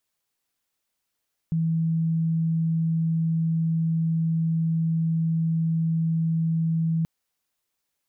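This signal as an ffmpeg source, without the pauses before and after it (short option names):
-f lavfi -i "aevalsrc='0.0944*sin(2*PI*163*t)':d=5.53:s=44100"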